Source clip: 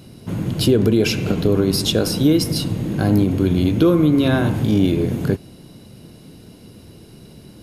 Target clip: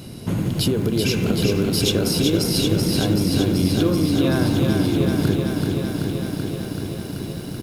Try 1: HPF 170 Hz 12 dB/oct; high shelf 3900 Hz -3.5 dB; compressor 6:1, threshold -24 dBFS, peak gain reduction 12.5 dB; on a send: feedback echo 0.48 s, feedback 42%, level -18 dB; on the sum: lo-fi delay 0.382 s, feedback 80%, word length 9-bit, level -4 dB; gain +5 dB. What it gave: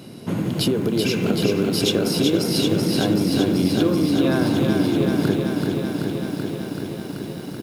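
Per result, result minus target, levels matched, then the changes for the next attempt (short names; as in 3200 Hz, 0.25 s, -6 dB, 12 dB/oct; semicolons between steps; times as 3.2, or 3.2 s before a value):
125 Hz band -3.5 dB; 8000 Hz band -3.0 dB
remove: HPF 170 Hz 12 dB/oct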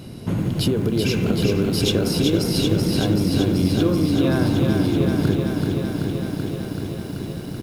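8000 Hz band -4.0 dB
change: high shelf 3900 Hz +3 dB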